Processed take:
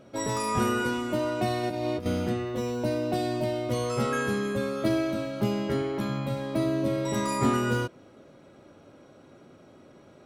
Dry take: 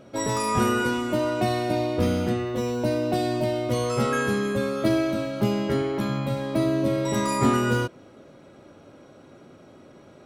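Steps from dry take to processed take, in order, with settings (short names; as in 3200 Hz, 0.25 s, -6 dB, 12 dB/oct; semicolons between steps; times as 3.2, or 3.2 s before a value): 1.63–2.06 negative-ratio compressor -26 dBFS, ratio -0.5; gain -3.5 dB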